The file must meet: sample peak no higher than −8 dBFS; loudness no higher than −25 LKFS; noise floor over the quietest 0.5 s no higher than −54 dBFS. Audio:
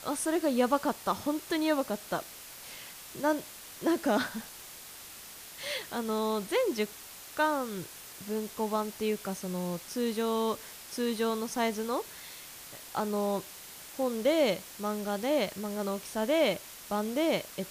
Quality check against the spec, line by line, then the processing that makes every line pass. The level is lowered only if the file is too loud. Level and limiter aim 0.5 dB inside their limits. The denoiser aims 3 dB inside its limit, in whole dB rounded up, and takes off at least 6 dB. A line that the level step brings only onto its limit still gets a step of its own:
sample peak −13.5 dBFS: in spec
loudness −31.5 LKFS: in spec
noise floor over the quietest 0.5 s −47 dBFS: out of spec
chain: broadband denoise 10 dB, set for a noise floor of −47 dBFS

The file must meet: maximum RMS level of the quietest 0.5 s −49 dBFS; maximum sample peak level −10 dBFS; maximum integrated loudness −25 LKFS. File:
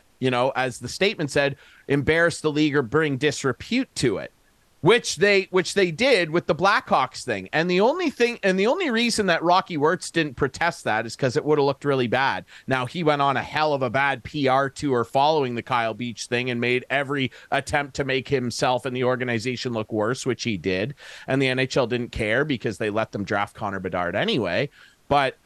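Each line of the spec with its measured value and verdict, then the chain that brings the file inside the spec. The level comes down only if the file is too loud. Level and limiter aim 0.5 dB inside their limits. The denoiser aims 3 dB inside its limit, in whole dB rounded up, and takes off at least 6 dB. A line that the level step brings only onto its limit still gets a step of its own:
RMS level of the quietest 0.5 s −60 dBFS: in spec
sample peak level −7.0 dBFS: out of spec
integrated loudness −23.0 LKFS: out of spec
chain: level −2.5 dB
brickwall limiter −10.5 dBFS

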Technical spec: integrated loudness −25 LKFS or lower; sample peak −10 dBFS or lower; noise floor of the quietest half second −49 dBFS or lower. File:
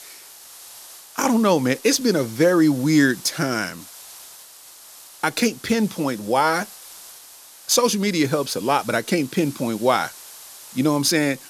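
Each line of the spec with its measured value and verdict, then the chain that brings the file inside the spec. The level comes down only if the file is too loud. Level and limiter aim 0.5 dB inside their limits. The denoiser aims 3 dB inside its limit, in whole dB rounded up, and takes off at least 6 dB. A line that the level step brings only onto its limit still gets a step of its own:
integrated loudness −20.5 LKFS: out of spec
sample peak −5.5 dBFS: out of spec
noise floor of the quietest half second −45 dBFS: out of spec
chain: level −5 dB

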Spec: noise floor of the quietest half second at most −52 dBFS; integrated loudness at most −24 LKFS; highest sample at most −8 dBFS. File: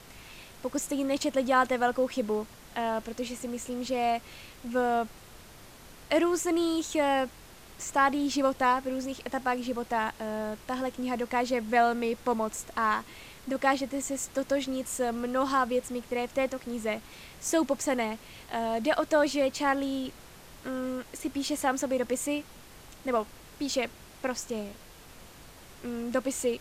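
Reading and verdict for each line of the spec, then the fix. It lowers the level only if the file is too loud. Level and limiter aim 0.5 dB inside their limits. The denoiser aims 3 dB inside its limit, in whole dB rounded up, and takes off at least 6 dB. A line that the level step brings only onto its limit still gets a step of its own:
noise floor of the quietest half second −50 dBFS: out of spec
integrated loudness −30.0 LKFS: in spec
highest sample −11.5 dBFS: in spec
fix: broadband denoise 6 dB, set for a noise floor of −50 dBFS

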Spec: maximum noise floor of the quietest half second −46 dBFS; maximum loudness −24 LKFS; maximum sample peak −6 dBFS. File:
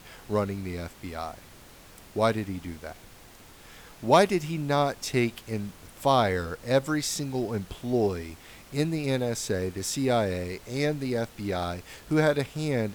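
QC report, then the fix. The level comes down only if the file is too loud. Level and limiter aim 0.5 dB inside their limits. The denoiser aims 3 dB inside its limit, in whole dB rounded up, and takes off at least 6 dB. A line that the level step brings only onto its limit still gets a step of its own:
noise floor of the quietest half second −50 dBFS: in spec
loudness −28.0 LKFS: in spec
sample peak −9.0 dBFS: in spec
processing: no processing needed

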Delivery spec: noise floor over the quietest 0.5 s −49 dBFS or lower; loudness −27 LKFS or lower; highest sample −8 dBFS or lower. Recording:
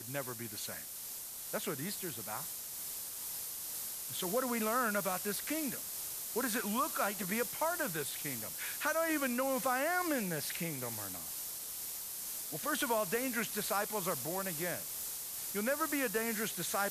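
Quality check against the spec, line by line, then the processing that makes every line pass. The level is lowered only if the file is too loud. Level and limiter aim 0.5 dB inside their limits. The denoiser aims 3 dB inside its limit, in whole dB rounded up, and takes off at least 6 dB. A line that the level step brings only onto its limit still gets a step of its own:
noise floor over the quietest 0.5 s −45 dBFS: out of spec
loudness −35.5 LKFS: in spec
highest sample −20.5 dBFS: in spec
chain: broadband denoise 7 dB, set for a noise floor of −45 dBFS

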